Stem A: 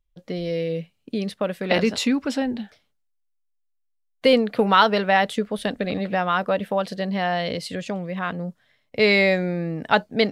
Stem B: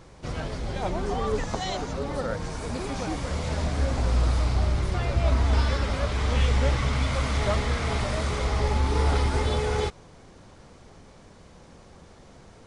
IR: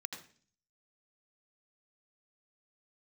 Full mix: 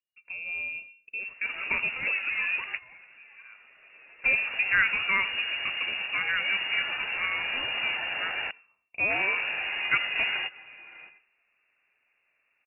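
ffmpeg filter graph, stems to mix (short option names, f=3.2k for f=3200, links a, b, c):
-filter_complex "[0:a]bandreject=f=2.1k:w=6.2,volume=-8dB,asplit=3[a][b][c];[b]volume=-9.5dB[d];[1:a]adelay=1200,volume=-2dB,asplit=3[e][f][g];[e]atrim=end=8.51,asetpts=PTS-STARTPTS,afade=t=out:st=8.506:d=0.004:c=hsin[h];[f]atrim=start=8.51:end=9.1,asetpts=PTS-STARTPTS,volume=0[i];[g]atrim=start=9.1,asetpts=PTS-STARTPTS,afade=t=in:d=0.004:c=hsin[j];[h][i][j]concat=n=3:v=0:a=1,asplit=2[k][l];[l]volume=-20.5dB[m];[c]apad=whole_len=611245[n];[k][n]sidechaingate=range=-20dB:threshold=-54dB:ratio=16:detection=peak[o];[2:a]atrim=start_sample=2205[p];[d][m]amix=inputs=2:normalize=0[q];[q][p]afir=irnorm=-1:irlink=0[r];[a][o][r]amix=inputs=3:normalize=0,highpass=f=240:p=1,equalizer=f=1.9k:w=4:g=-3,lowpass=f=2.5k:t=q:w=0.5098,lowpass=f=2.5k:t=q:w=0.6013,lowpass=f=2.5k:t=q:w=0.9,lowpass=f=2.5k:t=q:w=2.563,afreqshift=-2900"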